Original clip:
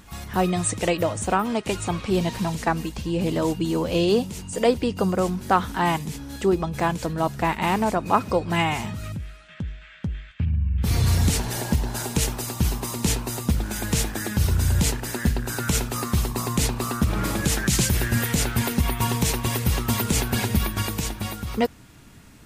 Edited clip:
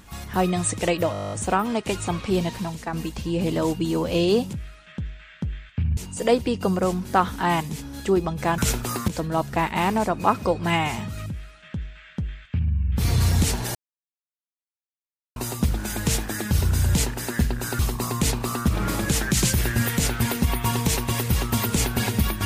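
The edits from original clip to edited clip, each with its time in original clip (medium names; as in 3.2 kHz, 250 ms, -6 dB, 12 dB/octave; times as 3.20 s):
1.12 s: stutter 0.02 s, 11 plays
2.12–2.73 s: fade out linear, to -9 dB
9.15–10.59 s: copy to 4.33 s
11.61–13.22 s: mute
15.65–16.15 s: move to 6.94 s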